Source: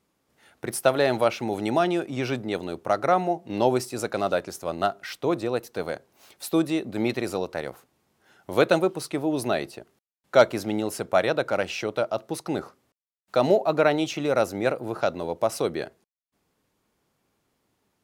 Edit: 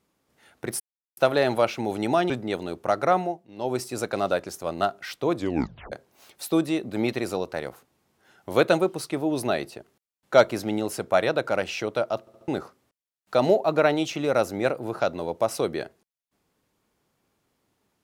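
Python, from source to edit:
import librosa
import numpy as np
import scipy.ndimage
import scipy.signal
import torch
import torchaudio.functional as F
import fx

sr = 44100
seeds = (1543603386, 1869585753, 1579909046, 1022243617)

y = fx.edit(x, sr, fx.insert_silence(at_s=0.8, length_s=0.37),
    fx.cut(start_s=1.93, length_s=0.38),
    fx.fade_down_up(start_s=3.18, length_s=0.69, db=-16.0, fade_s=0.3),
    fx.tape_stop(start_s=5.37, length_s=0.56),
    fx.stutter_over(start_s=12.21, slice_s=0.07, count=4), tone=tone)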